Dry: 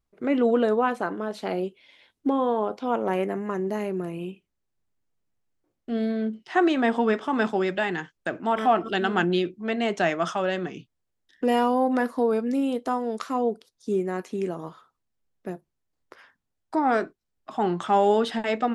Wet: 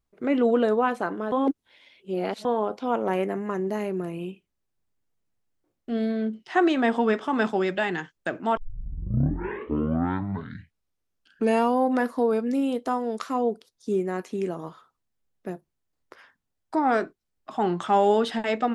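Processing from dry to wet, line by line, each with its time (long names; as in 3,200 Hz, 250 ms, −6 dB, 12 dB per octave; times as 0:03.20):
0:01.32–0:02.45: reverse
0:08.57: tape start 3.16 s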